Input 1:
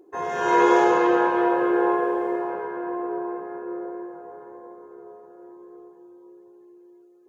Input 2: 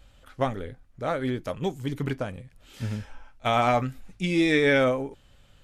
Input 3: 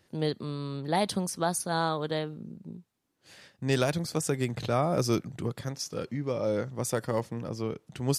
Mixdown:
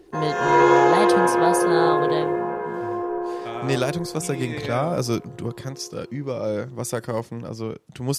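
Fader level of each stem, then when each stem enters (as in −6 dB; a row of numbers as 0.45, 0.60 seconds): +2.0, −11.5, +3.0 decibels; 0.00, 0.00, 0.00 seconds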